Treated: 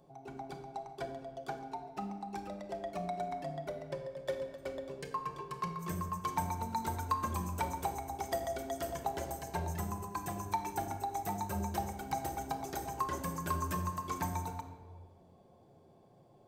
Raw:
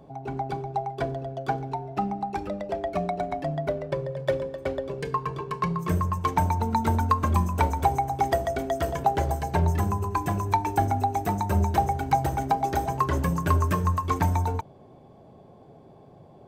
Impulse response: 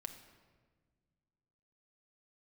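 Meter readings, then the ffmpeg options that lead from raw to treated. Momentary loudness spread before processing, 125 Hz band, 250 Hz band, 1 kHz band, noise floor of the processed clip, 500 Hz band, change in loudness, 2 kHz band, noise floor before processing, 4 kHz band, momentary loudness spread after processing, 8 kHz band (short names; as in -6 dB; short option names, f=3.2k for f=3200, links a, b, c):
8 LU, -15.5 dB, -11.5 dB, -11.0 dB, -62 dBFS, -11.0 dB, -12.0 dB, -10.5 dB, -51 dBFS, -7.0 dB, 7 LU, -3.5 dB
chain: -filter_complex "[0:a]bass=f=250:g=-4,treble=f=4k:g=9[a];[1:a]atrim=start_sample=2205[b];[a][b]afir=irnorm=-1:irlink=0,volume=-7.5dB"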